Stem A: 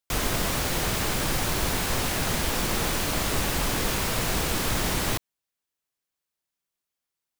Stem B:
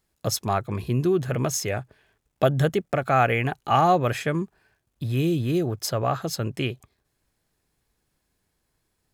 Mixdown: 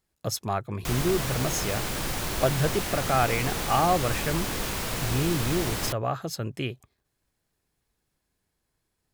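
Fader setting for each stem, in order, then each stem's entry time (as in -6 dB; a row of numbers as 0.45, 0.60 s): -4.0, -4.0 dB; 0.75, 0.00 s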